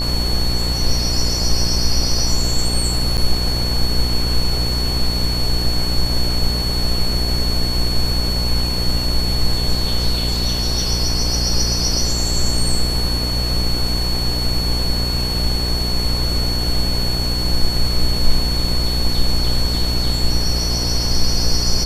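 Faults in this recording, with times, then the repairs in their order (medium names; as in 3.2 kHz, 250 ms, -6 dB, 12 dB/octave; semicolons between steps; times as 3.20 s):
buzz 60 Hz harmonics 18 -22 dBFS
whine 4.4 kHz -22 dBFS
3.17–3.18 s: dropout 7.8 ms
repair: band-stop 4.4 kHz, Q 30; de-hum 60 Hz, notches 18; interpolate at 3.17 s, 7.8 ms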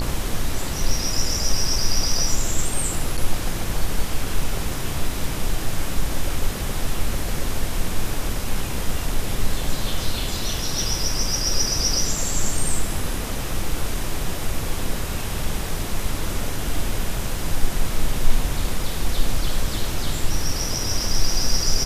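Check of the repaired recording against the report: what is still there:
nothing left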